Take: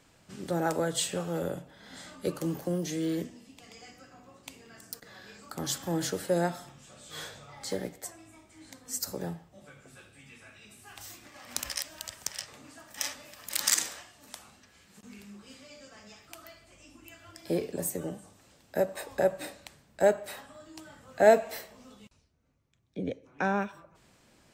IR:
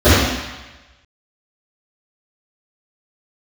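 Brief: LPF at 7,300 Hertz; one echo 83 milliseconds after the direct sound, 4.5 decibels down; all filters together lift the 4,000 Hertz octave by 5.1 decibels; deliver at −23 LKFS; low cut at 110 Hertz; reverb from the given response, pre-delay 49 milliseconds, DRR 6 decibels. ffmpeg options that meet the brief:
-filter_complex "[0:a]highpass=110,lowpass=7300,equalizer=frequency=4000:width_type=o:gain=7,aecho=1:1:83:0.596,asplit=2[link_01][link_02];[1:a]atrim=start_sample=2205,adelay=49[link_03];[link_02][link_03]afir=irnorm=-1:irlink=0,volume=-36.5dB[link_04];[link_01][link_04]amix=inputs=2:normalize=0,volume=5.5dB"

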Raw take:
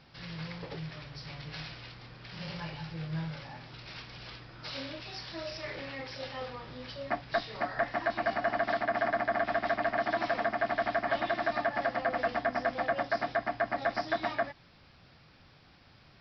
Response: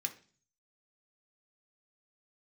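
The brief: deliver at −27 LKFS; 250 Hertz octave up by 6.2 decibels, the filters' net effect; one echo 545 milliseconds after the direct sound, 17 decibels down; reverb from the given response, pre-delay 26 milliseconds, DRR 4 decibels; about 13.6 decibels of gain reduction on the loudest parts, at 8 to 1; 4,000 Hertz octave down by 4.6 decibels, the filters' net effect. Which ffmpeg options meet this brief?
-filter_complex "[0:a]equalizer=frequency=250:width_type=o:gain=8,equalizer=frequency=4000:width_type=o:gain=-6,acompressor=threshold=-39dB:ratio=8,aecho=1:1:545:0.141,asplit=2[link_01][link_02];[1:a]atrim=start_sample=2205,adelay=26[link_03];[link_02][link_03]afir=irnorm=-1:irlink=0,volume=-4dB[link_04];[link_01][link_04]amix=inputs=2:normalize=0,volume=15.5dB"

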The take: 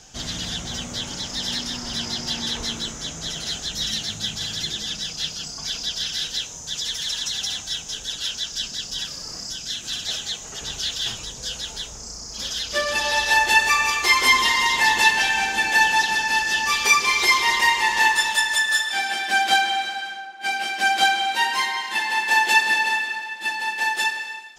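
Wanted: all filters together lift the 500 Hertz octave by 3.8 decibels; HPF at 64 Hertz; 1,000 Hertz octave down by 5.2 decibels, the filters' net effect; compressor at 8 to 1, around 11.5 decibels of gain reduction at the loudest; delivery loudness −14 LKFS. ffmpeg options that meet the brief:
ffmpeg -i in.wav -af "highpass=64,equalizer=frequency=500:width_type=o:gain=7.5,equalizer=frequency=1000:width_type=o:gain=-9,acompressor=threshold=-25dB:ratio=8,volume=13.5dB" out.wav

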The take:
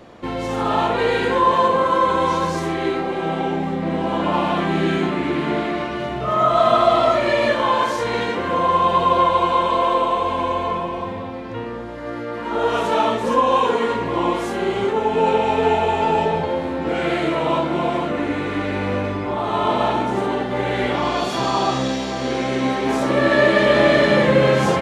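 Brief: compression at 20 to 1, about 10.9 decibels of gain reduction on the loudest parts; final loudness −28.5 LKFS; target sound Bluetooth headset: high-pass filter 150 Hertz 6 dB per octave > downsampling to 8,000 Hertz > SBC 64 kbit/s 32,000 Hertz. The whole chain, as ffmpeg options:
ffmpeg -i in.wav -af "acompressor=threshold=-21dB:ratio=20,highpass=frequency=150:poles=1,aresample=8000,aresample=44100,volume=-2.5dB" -ar 32000 -c:a sbc -b:a 64k out.sbc

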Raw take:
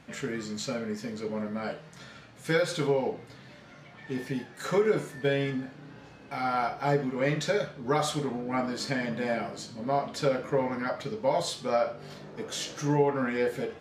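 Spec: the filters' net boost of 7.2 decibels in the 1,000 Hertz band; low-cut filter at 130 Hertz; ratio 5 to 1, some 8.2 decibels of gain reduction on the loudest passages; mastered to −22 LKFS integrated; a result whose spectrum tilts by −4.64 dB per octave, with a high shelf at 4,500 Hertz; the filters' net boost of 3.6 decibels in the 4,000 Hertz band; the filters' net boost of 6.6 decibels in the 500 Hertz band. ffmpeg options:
ffmpeg -i in.wav -af "highpass=130,equalizer=frequency=500:width_type=o:gain=6,equalizer=frequency=1000:width_type=o:gain=7.5,equalizer=frequency=4000:width_type=o:gain=5.5,highshelf=frequency=4500:gain=-3.5,acompressor=threshold=-23dB:ratio=5,volume=7dB" out.wav

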